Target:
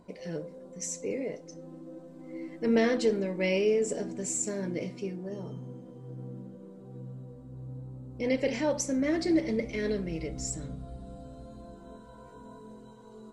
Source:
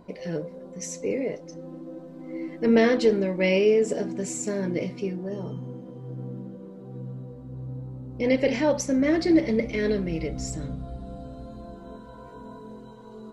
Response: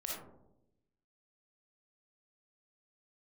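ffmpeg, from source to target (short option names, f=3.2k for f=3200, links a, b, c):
-filter_complex "[0:a]equalizer=f=8.1k:w=1.4:g=9,asplit=2[a][b];[1:a]atrim=start_sample=2205[c];[b][c]afir=irnorm=-1:irlink=0,volume=-19dB[d];[a][d]amix=inputs=2:normalize=0,volume=-6.5dB"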